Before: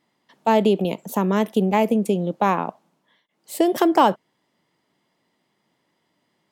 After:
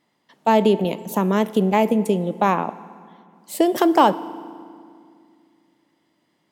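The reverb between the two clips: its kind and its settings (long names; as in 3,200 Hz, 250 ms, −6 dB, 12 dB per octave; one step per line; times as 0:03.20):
feedback delay network reverb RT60 2.2 s, low-frequency decay 1.45×, high-frequency decay 0.75×, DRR 15.5 dB
level +1 dB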